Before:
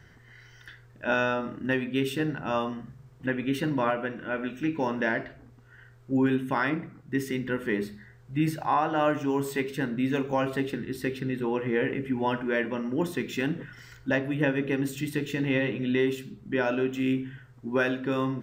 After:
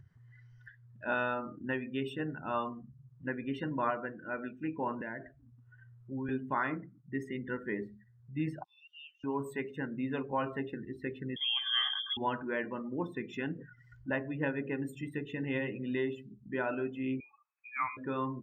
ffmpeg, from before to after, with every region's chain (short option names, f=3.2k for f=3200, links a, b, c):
-filter_complex "[0:a]asettb=1/sr,asplit=3[a][b][c];[a]atrim=end=5.014[d];[b]atrim=start=5.01:end=6.29,asetpts=PTS-STARTPTS,afade=t=in:d=0.004:c=qsin,afade=t=out:st=1.276:d=0.004:c=qsin,equalizer=f=4.9k:w=2.3:g=-4.5,acrossover=split=170|3000[e][f][g];[f]acompressor=threshold=-33dB:ratio=2.5:attack=3.2:release=140:knee=2.83:detection=peak[h];[e][h][g]amix=inputs=3:normalize=0[i];[c]atrim=start=6.286[j];[d][i]acrossfade=d=0.004:c1=hsin:c2=qsin[k];[k][j]acrossfade=d=0.004:c1=qsin:c2=hsin,asettb=1/sr,asplit=3[l][m][n];[l]atrim=end=8.644[o];[m]atrim=start=8.64:end=9.24,asetpts=PTS-STARTPTS,afade=t=in:d=0.004:c=qsin,afade=t=out:st=0.596:d=0.004:c=qsin,asuperpass=centerf=4200:order=8:qfactor=1.1,aecho=1:1:2.2:0.34,atrim=end_sample=26460[p];[n]atrim=start=9.236[q];[o][p]acrossfade=d=0.004:c1=hsin:c2=qsin[r];[r][q]acrossfade=d=0.004:c1=qsin:c2=hsin,asettb=1/sr,asplit=3[s][t][u];[s]atrim=end=11.364[v];[t]atrim=start=11.36:end=12.17,asetpts=PTS-STARTPTS,afade=t=in:d=0.004:c=qsin,afade=t=out:st=0.806:d=0.004:c=qsin,lowpass=f=3.1k:t=q:w=0.5098,lowpass=f=3.1k:t=q:w=0.6013,lowpass=f=3.1k:t=q:w=0.9,lowpass=f=3.1k:t=q:w=2.563,afreqshift=-3600,aecho=1:1:2.5:0.95,atrim=end_sample=35721[w];[u]atrim=start=12.166[x];[v][w]acrossfade=d=0.004:c1=hsin:c2=qsin[y];[y][x]acrossfade=d=0.004:c1=qsin:c2=hsin,asettb=1/sr,asplit=3[z][aa][ab];[z]atrim=end=17.204[ac];[aa]atrim=start=17.2:end=17.97,asetpts=PTS-STARTPTS,afade=t=in:d=0.004:c=qsin,afade=t=out:st=0.766:d=0.004:c=qsin,highpass=f=910:p=1,lowpass=f=2.3k:t=q:w=0.5098,lowpass=f=2.3k:t=q:w=0.6013,lowpass=f=2.3k:t=q:w=0.9,lowpass=f=2.3k:t=q:w=2.563,afreqshift=-2700[ad];[ab]atrim=start=17.966[ae];[ac][ad]acrossfade=d=0.004:c1=hsin:c2=qsin[af];[af][ae]acrossfade=d=0.004:c1=qsin:c2=hsin,afftdn=nr=28:nf=-38,equalizer=f=1.1k:t=o:w=0.75:g=6.5,acompressor=mode=upward:threshold=-37dB:ratio=2.5,volume=-8.5dB"